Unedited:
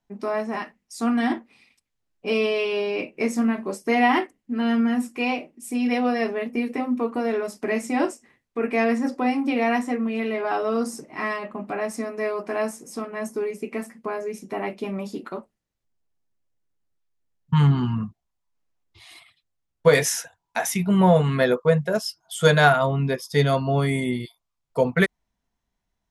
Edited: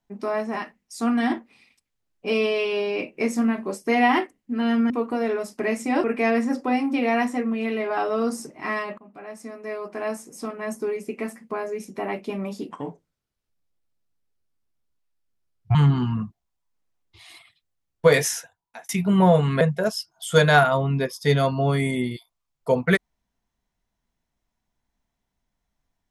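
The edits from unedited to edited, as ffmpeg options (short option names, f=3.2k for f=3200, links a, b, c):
-filter_complex "[0:a]asplit=8[a][b][c][d][e][f][g][h];[a]atrim=end=4.902[i];[b]atrim=start=6.938:end=8.082[j];[c]atrim=start=8.578:end=11.52,asetpts=PTS-STARTPTS,afade=t=out:st=2.938:d=0.004:c=hsin:silence=0.112202[k];[d]atrim=start=11.52:end=15.254,asetpts=PTS-STARTPTS,afade=t=in:d=1.6:silence=0.112202[l];[e]atrim=start=15.25:end=17.56,asetpts=PTS-STARTPTS,asetrate=33516,aresample=44100[m];[f]atrim=start=17.556:end=20.7,asetpts=PTS-STARTPTS,afade=t=out:st=2.454:d=0.69[n];[g]atrim=start=20.7:end=21.422,asetpts=PTS-STARTPTS,afade=t=in:d=0.004:c=hsin[o];[h]atrim=start=21.698[p];[i][j]acrossfade=d=0.004:c1=hsin:c2=hsin[q];[k][l]concat=n=2:v=0:a=1[r];[q][r]acrossfade=d=0.004:c1=hsin:c2=hsin[s];[s][m]acrossfade=d=0.004:c1=hsin:c2=hsin[t];[n][o]concat=n=2:v=0:a=1[u];[t][u]acrossfade=d=0.004:c1=hsin:c2=hsin[v];[v][p]acrossfade=d=0.004:c1=hsin:c2=hsin"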